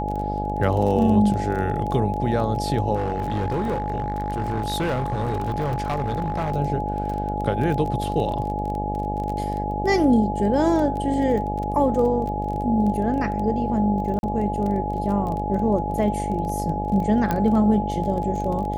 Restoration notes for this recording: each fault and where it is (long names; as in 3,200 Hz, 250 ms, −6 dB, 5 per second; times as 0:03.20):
mains buzz 50 Hz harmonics 17 −28 dBFS
surface crackle 19 per second −28 dBFS
whistle 840 Hz −27 dBFS
0:02.95–0:06.53: clipping −20 dBFS
0:14.19–0:14.23: drop-out 41 ms
0:17.31: click −10 dBFS